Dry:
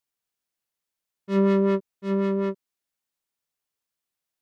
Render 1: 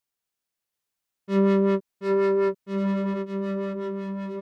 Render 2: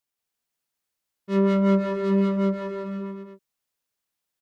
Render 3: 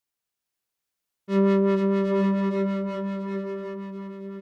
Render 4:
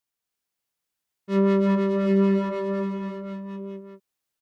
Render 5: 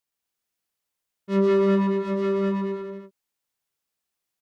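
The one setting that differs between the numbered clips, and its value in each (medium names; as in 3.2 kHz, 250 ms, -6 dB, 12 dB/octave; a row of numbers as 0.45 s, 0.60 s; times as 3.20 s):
bouncing-ball echo, first gap: 730 ms, 180 ms, 460 ms, 310 ms, 120 ms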